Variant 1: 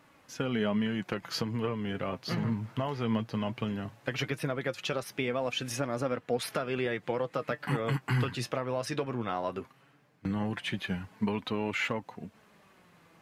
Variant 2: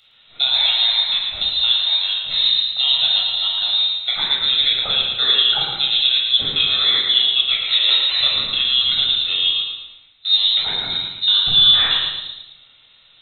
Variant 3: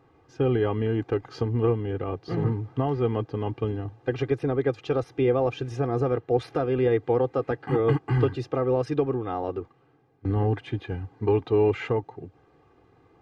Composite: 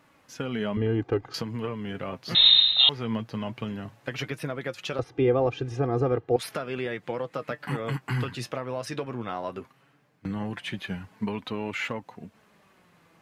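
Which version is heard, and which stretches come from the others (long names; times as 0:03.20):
1
0:00.77–0:01.34: punch in from 3
0:02.35–0:02.89: punch in from 2
0:04.99–0:06.36: punch in from 3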